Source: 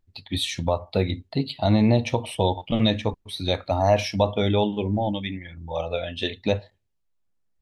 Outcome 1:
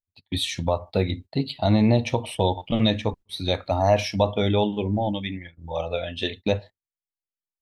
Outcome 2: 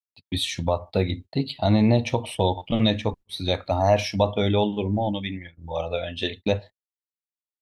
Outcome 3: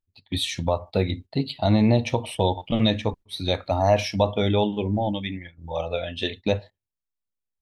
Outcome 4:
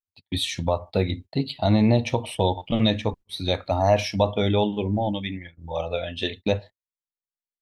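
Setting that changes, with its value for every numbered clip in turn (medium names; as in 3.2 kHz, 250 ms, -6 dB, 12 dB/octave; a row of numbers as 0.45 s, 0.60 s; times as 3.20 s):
gate, range: -29 dB, -60 dB, -15 dB, -41 dB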